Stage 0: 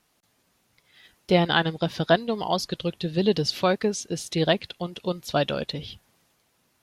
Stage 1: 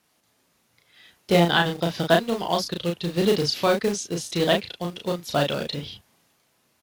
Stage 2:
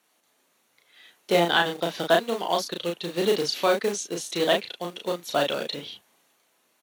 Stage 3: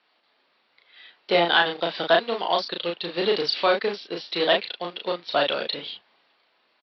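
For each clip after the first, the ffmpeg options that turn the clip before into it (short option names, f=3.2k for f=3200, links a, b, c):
-filter_complex "[0:a]highpass=f=91:p=1,acrossover=split=680|1600[a][b][c];[a]acrusher=bits=3:mode=log:mix=0:aa=0.000001[d];[d][b][c]amix=inputs=3:normalize=0,asplit=2[e][f];[f]adelay=35,volume=-3.5dB[g];[e][g]amix=inputs=2:normalize=0"
-af "asoftclip=type=tanh:threshold=-5.5dB,highpass=300,bandreject=f=5k:w=7.3"
-filter_complex "[0:a]lowshelf=f=320:g=-11,asplit=2[a][b];[b]asoftclip=type=tanh:threshold=-16.5dB,volume=-4dB[c];[a][c]amix=inputs=2:normalize=0,aresample=11025,aresample=44100"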